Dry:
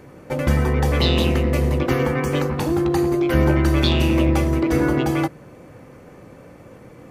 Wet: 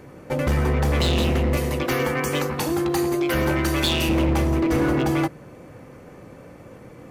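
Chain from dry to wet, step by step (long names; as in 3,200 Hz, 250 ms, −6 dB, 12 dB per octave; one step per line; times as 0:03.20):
0:01.57–0:04.09: spectral tilt +2 dB per octave
hard clipping −16.5 dBFS, distortion −12 dB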